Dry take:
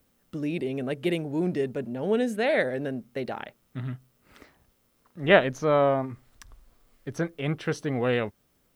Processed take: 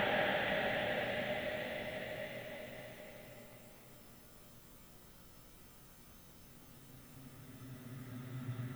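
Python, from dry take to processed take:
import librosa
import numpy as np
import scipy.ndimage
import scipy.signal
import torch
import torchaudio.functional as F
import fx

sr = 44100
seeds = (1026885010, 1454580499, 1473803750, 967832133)

y = fx.auto_swell(x, sr, attack_ms=164.0)
y = fx.paulstretch(y, sr, seeds[0], factor=36.0, window_s=0.25, from_s=3.49)
y = F.gain(torch.from_numpy(y), 10.0).numpy()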